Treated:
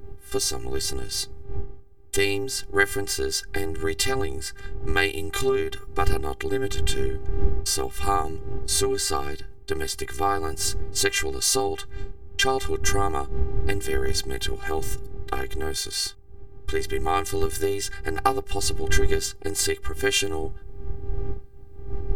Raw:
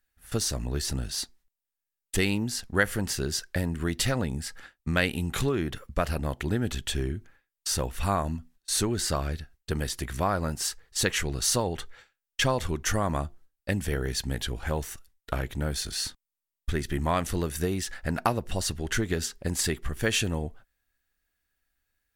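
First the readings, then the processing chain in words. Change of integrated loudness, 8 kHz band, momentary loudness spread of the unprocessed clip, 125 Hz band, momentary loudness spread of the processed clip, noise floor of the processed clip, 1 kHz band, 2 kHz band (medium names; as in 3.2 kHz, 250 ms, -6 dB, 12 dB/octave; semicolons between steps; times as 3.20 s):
+3.0 dB, +3.5 dB, 8 LU, -1.5 dB, 12 LU, -41 dBFS, +5.0 dB, +4.0 dB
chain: wind noise 90 Hz -31 dBFS; robot voice 399 Hz; trim +6 dB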